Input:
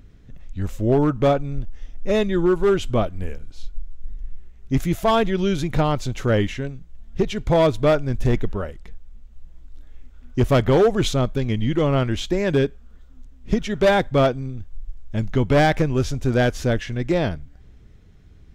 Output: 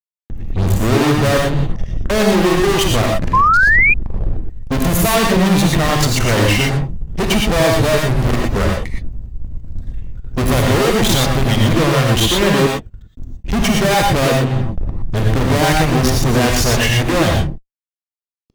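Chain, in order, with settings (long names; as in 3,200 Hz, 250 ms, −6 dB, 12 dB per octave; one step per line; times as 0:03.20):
spectral dynamics exaggerated over time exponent 1.5
fuzz pedal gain 47 dB, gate −50 dBFS
reverb whose tail is shaped and stops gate 140 ms rising, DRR 0 dB
sound drawn into the spectrogram rise, 0:03.33–0:03.94, 1,000–2,500 Hz −9 dBFS
level −2 dB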